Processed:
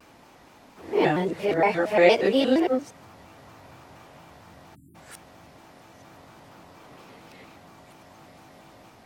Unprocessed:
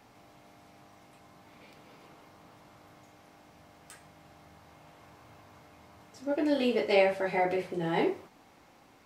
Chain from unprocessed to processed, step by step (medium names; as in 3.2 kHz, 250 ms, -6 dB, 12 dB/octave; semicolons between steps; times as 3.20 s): reverse the whole clip; spectral selection erased 4.75–4.95 s, 370–7900 Hz; vibrato with a chosen wave square 4.3 Hz, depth 160 cents; trim +6.5 dB